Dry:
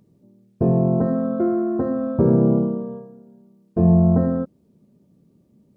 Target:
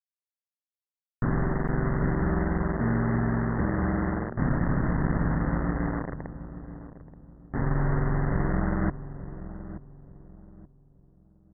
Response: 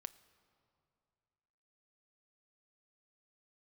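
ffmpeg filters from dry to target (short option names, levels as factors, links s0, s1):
-filter_complex "[0:a]crystalizer=i=5.5:c=0,areverse,acompressor=threshold=0.0398:ratio=5,areverse,aeval=exprs='val(0)*sin(2*PI*110*n/s)':c=same,aresample=8000,acrusher=bits=5:mix=0:aa=0.000001,aresample=44100,asplit=2[s0][s1];[s1]adelay=439,lowpass=f=1500:p=1,volume=0.237,asplit=2[s2][s3];[s3]adelay=439,lowpass=f=1500:p=1,volume=0.33,asplit=2[s4][s5];[s5]adelay=439,lowpass=f=1500:p=1,volume=0.33[s6];[s0][s2][s4][s6]amix=inputs=4:normalize=0,asetrate=22050,aresample=44100,volume=2.11"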